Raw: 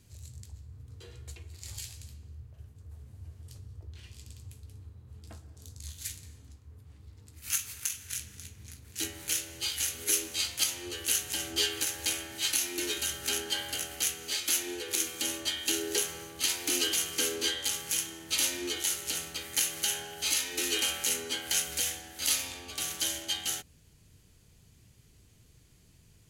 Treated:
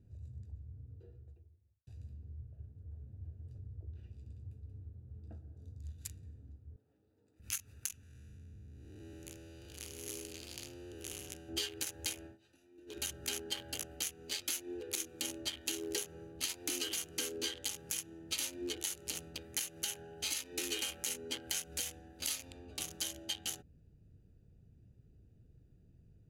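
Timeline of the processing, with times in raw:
0.48–1.87 studio fade out
6.76–7.4 HPF 410 Hz
8.03–11.49 time blur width 0.342 s
12.26–12.98 dip -18 dB, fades 0.12 s
whole clip: Wiener smoothing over 41 samples; compressor, threshold -33 dBFS; gain -1 dB

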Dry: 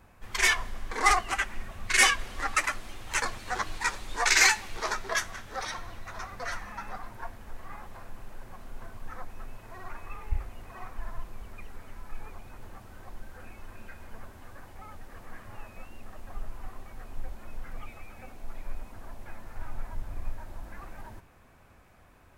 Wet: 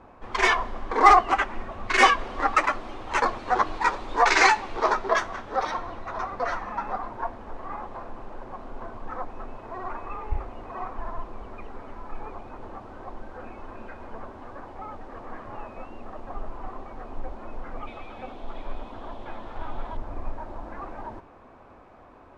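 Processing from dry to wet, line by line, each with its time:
17.87–19.97 bell 3400 Hz +14 dB 0.5 oct
whole clip: LPF 4200 Hz 12 dB/oct; band shelf 540 Hz +10.5 dB 2.7 oct; gain +1 dB

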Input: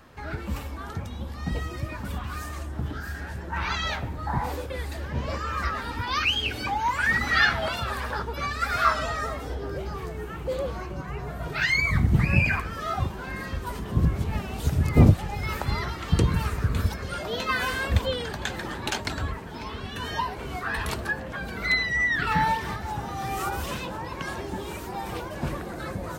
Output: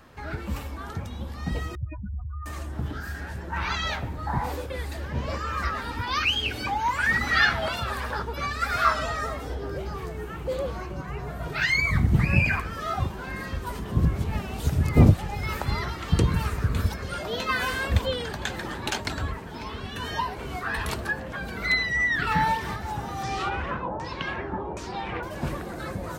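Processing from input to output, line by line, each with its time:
1.75–2.46 spectral contrast raised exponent 3.9
23.23–25.23 LFO low-pass saw down 1.3 Hz 630–7000 Hz

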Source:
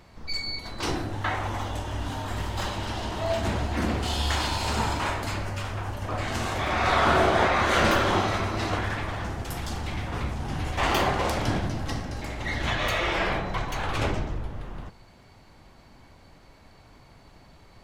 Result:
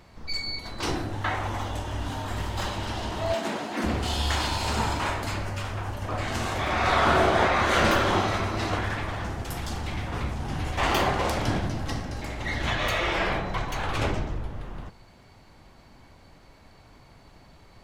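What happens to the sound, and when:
3.34–3.84 HPF 200 Hz 24 dB/oct

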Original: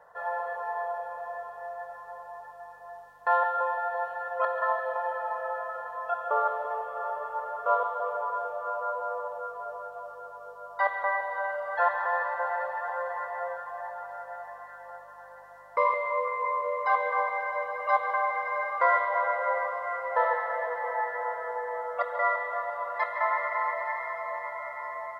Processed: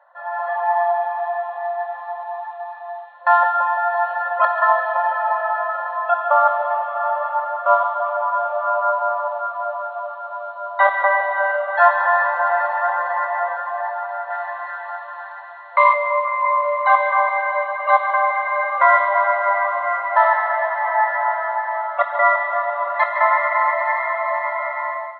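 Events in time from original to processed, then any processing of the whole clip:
0.48–3.14 comb 2.5 ms, depth 76%
10.29–12.9 doubler 20 ms -5.5 dB
14.3–15.93 tilt shelf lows -6.5 dB, about 710 Hz
whole clip: FFT band-pass 530–4300 Hz; AGC gain up to 13 dB

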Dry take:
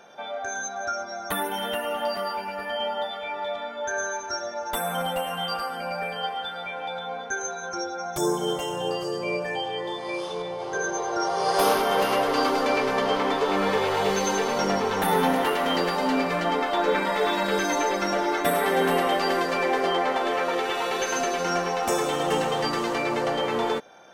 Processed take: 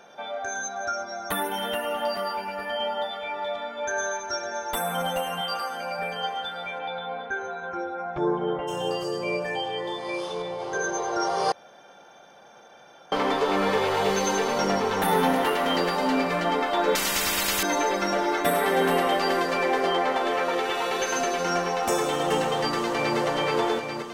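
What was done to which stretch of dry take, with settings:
3.2–4.28 echo throw 0.56 s, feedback 55%, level -9.5 dB
5.41–5.99 low shelf 180 Hz -11.5 dB
6.78–8.67 LPF 4500 Hz -> 2100 Hz 24 dB/oct
11.52–13.12 room tone
16.95–17.63 spectral compressor 10:1
22.56–23.18 echo throw 0.42 s, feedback 70%, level -4.5 dB

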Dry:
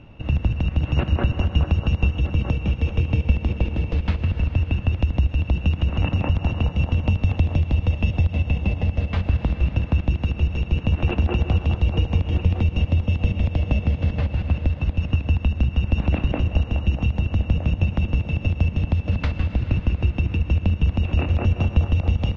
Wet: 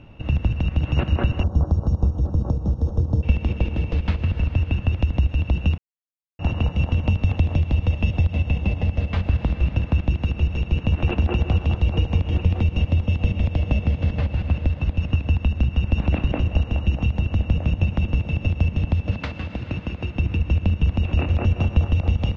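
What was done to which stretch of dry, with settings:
1.43–3.23 Butterworth band-stop 2400 Hz, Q 0.56
5.78–6.39 mute
19.11–20.16 HPF 190 Hz 6 dB/oct

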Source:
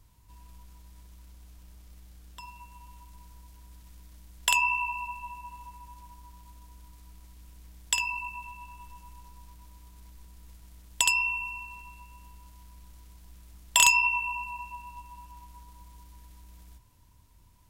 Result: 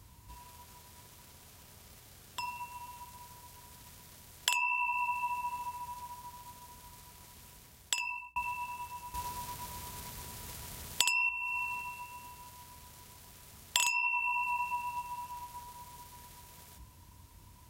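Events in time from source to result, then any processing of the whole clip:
7.47–8.36 fade out
9.14–11.29 gain +8.5 dB
whole clip: HPF 61 Hz; notches 60/120/180/240/300 Hz; compressor 6:1, threshold -36 dBFS; gain +7 dB

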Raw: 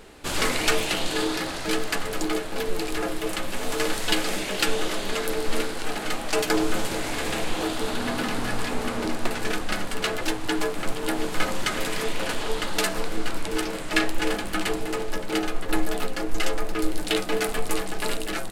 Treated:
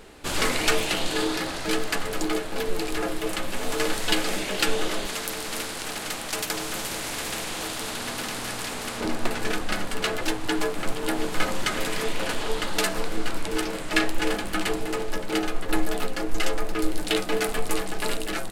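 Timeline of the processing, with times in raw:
5.06–9.01 spectral compressor 2:1

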